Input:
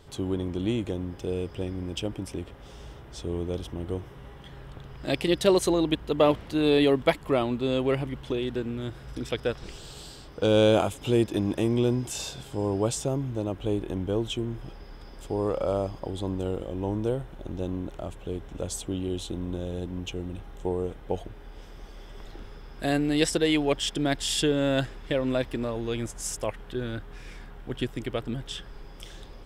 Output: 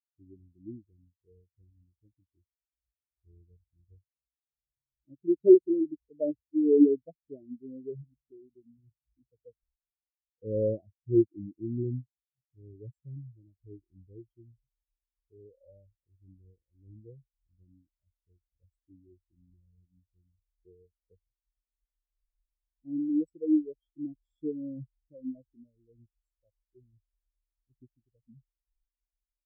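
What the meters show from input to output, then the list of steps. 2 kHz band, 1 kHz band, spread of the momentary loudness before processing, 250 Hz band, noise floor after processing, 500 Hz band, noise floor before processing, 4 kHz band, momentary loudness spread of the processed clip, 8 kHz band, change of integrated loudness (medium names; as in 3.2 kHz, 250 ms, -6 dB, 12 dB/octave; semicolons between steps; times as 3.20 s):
under -40 dB, under -40 dB, 22 LU, -3.0 dB, under -85 dBFS, -5.0 dB, -45 dBFS, under -40 dB, 24 LU, under -40 dB, 0.0 dB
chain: peaking EQ 1.4 kHz -12.5 dB 2.8 oct; spectral contrast expander 4:1; trim +6.5 dB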